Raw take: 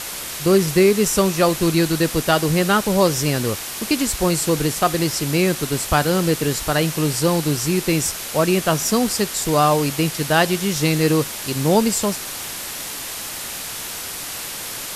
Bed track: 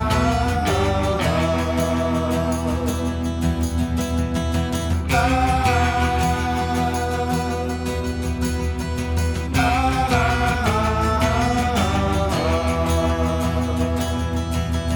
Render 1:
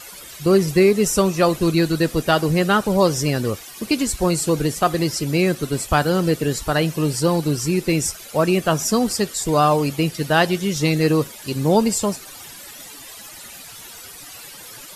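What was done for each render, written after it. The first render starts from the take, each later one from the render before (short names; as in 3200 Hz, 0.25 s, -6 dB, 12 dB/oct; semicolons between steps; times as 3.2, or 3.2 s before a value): denoiser 14 dB, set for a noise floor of -30 dBFS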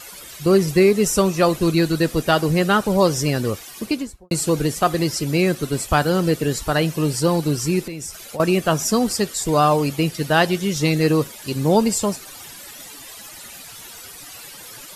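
3.76–4.31 studio fade out; 7.86–8.4 compressor 8:1, threshold -27 dBFS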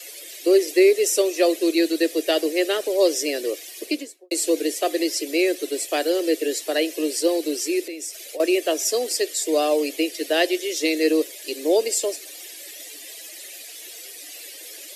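steep high-pass 300 Hz 72 dB/oct; band shelf 1100 Hz -15.5 dB 1.1 oct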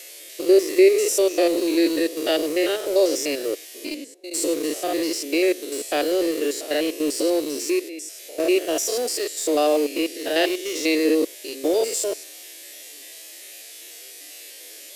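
stepped spectrum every 0.1 s; in parallel at -11 dB: sample gate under -25 dBFS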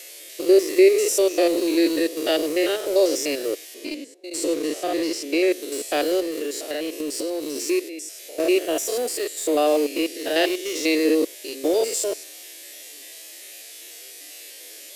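3.74–5.52 high shelf 8000 Hz -8 dB; 6.2–7.56 compressor 4:1, threshold -24 dBFS; 8.67–9.67 bell 5400 Hz -6.5 dB 0.56 oct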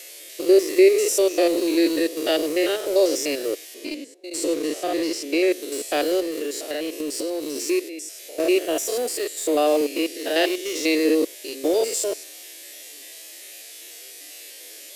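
9.81–10.58 HPF 160 Hz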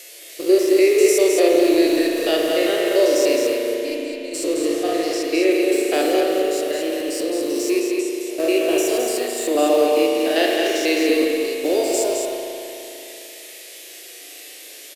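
on a send: echo 0.214 s -5 dB; on the sum: spring tank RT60 3.1 s, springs 37 ms, chirp 20 ms, DRR 0 dB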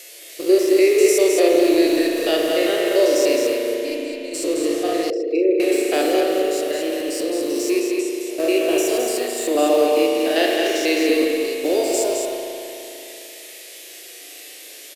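5.1–5.6 formant sharpening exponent 2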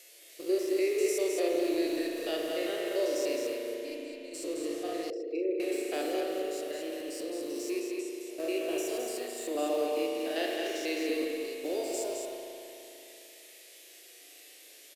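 gain -14 dB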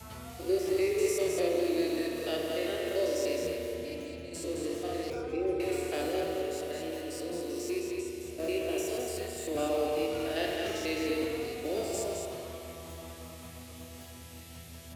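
add bed track -26.5 dB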